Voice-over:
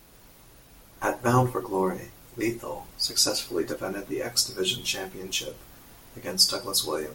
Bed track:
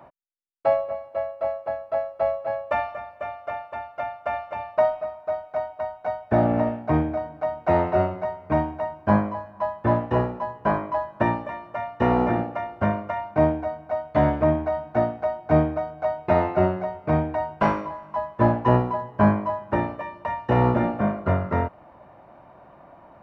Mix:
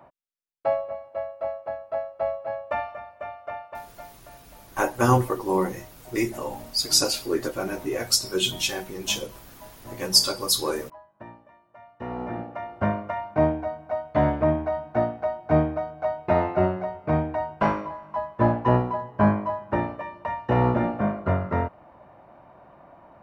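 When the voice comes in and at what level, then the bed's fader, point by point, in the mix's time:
3.75 s, +2.5 dB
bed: 3.74 s -3.5 dB
4.25 s -21.5 dB
11.63 s -21.5 dB
12.78 s -1.5 dB

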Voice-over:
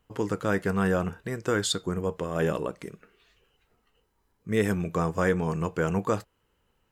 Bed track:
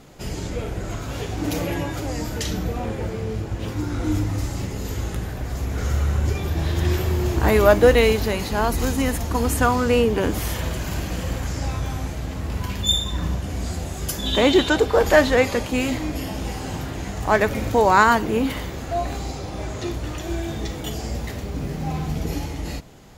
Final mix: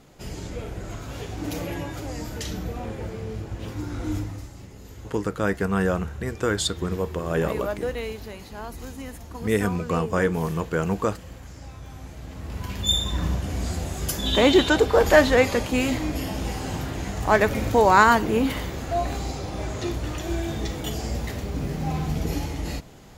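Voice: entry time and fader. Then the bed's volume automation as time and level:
4.95 s, +2.0 dB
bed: 4.17 s -5.5 dB
4.51 s -15 dB
11.76 s -15 dB
13.05 s -0.5 dB

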